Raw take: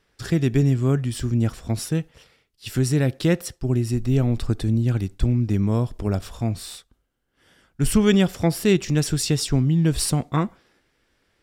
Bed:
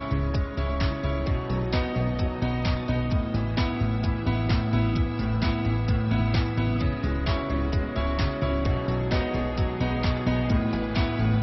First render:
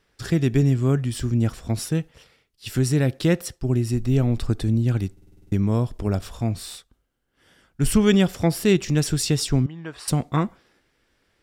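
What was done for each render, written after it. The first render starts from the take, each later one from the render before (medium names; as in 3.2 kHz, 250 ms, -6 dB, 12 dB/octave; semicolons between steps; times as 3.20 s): 5.12 s: stutter in place 0.05 s, 8 plays; 9.66–10.08 s: band-pass filter 1.2 kHz, Q 1.3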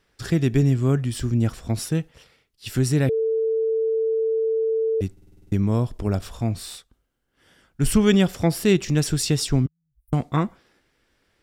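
3.09–5.01 s: bleep 446 Hz -19 dBFS; 9.67–10.13 s: inverse Chebyshev band-stop 340–6100 Hz, stop band 80 dB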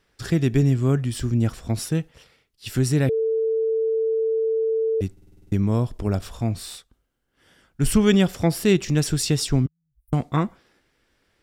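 no audible change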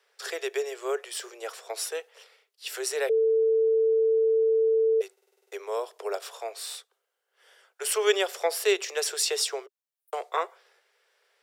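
steep high-pass 400 Hz 96 dB/octave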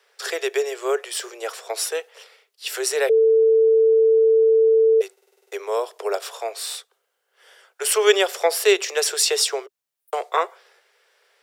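trim +7 dB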